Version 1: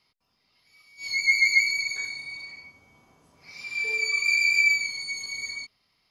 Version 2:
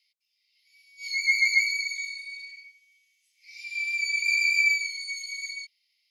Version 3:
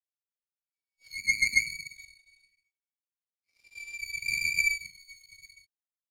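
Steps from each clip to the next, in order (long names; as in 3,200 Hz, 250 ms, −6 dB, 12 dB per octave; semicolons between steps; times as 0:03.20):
Butterworth high-pass 2,000 Hz 96 dB per octave; level −1.5 dB
power curve on the samples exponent 2; level +2 dB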